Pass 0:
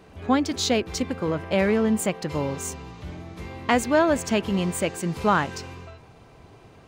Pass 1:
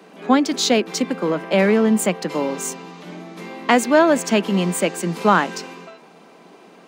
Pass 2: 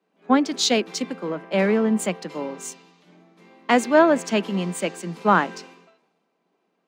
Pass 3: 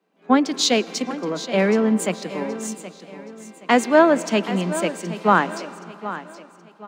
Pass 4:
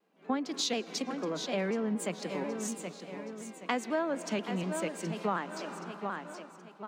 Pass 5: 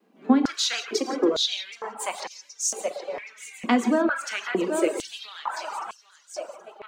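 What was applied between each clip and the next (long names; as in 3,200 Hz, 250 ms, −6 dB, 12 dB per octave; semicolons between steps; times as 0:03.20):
Butterworth high-pass 170 Hz 72 dB per octave; level +5.5 dB
high-shelf EQ 11,000 Hz −11 dB; multiband upward and downward expander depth 70%; level −4.5 dB
repeating echo 773 ms, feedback 35%, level −13.5 dB; convolution reverb RT60 3.3 s, pre-delay 98 ms, DRR 19.5 dB; level +1.5 dB
downward compressor 3 to 1, threshold −29 dBFS, peak gain reduction 15.5 dB; pitch modulation by a square or saw wave saw down 4.1 Hz, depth 100 cents; level −3.5 dB
reverb whose tail is shaped and stops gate 200 ms flat, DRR 2.5 dB; reverb reduction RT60 0.94 s; high-pass on a step sequencer 2.2 Hz 230–5,700 Hz; level +6 dB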